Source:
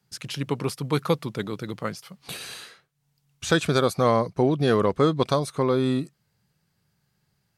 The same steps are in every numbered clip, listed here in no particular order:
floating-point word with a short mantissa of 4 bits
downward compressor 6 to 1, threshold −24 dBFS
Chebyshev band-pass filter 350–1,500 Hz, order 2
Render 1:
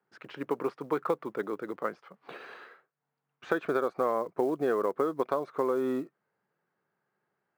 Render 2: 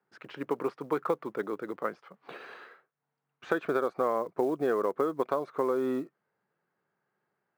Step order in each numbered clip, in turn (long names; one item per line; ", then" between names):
Chebyshev band-pass filter, then downward compressor, then floating-point word with a short mantissa
Chebyshev band-pass filter, then floating-point word with a short mantissa, then downward compressor